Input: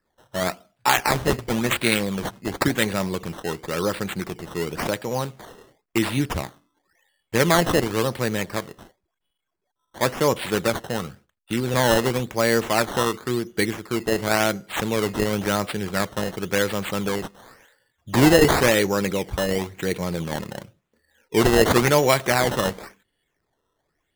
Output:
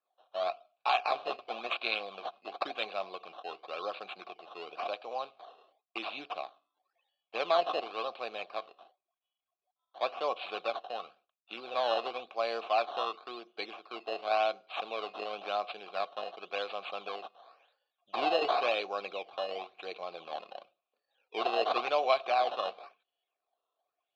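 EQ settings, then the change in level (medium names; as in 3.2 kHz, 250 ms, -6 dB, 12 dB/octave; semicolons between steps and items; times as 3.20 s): vowel filter a; high-pass 330 Hz 12 dB/octave; resonant low-pass 4 kHz, resonance Q 4.2; 0.0 dB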